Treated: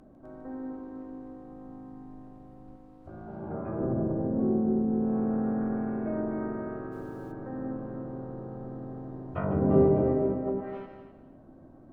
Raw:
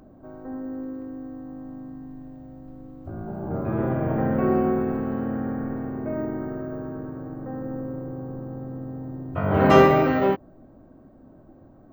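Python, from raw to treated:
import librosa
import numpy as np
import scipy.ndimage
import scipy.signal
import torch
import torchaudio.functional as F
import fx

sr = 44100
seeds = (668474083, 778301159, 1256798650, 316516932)

y = fx.hum_notches(x, sr, base_hz=50, count=2)
y = fx.echo_feedback(y, sr, ms=255, feedback_pct=25, wet_db=-3.5)
y = fx.env_lowpass_down(y, sr, base_hz=410.0, full_db=-18.5)
y = fx.low_shelf(y, sr, hz=430.0, db=-6.0, at=(2.76, 3.81))
y = y + 10.0 ** (-10.0 / 20.0) * np.pad(y, (int(150 * sr / 1000.0), 0))[:len(y)]
y = fx.dmg_noise_colour(y, sr, seeds[0], colour='pink', level_db=-62.0, at=(6.91, 7.31), fade=0.02)
y = F.gain(torch.from_numpy(y), -4.5).numpy()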